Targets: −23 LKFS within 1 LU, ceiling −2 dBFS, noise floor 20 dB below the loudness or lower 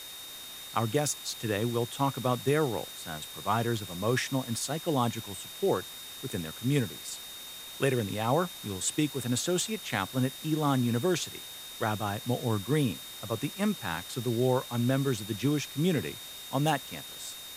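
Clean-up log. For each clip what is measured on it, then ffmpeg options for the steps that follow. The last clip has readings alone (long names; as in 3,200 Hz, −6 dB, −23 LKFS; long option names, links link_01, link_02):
interfering tone 3,700 Hz; level of the tone −44 dBFS; background noise floor −44 dBFS; target noise floor −51 dBFS; integrated loudness −31.0 LKFS; sample peak −12.0 dBFS; target loudness −23.0 LKFS
→ -af "bandreject=frequency=3700:width=30"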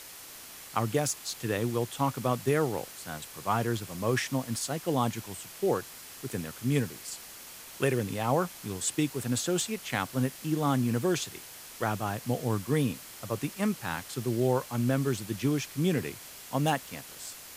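interfering tone none found; background noise floor −47 dBFS; target noise floor −51 dBFS
→ -af "afftdn=noise_reduction=6:noise_floor=-47"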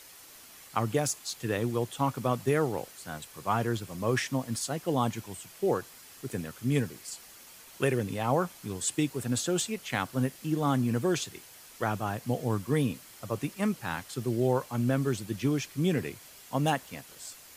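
background noise floor −52 dBFS; integrated loudness −30.5 LKFS; sample peak −12.5 dBFS; target loudness −23.0 LKFS
→ -af "volume=7.5dB"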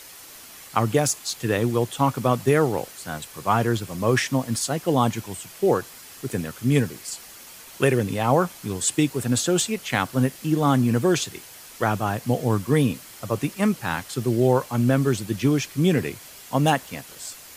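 integrated loudness −23.0 LKFS; sample peak −5.0 dBFS; background noise floor −44 dBFS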